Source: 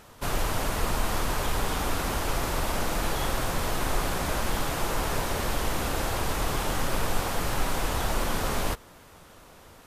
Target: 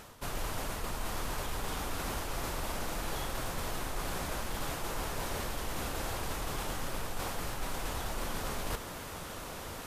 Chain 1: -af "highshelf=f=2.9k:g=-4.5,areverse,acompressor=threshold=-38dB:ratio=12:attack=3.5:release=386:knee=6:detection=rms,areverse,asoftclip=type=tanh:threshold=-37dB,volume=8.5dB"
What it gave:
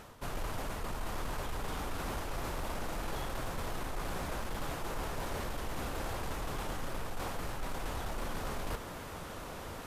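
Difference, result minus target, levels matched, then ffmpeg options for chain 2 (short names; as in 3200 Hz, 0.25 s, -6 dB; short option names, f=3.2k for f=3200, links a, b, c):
soft clip: distortion +14 dB; 8000 Hz band -4.0 dB
-af "highshelf=f=2.9k:g=2,areverse,acompressor=threshold=-38dB:ratio=12:attack=3.5:release=386:knee=6:detection=rms,areverse,asoftclip=type=tanh:threshold=-28.5dB,volume=8.5dB"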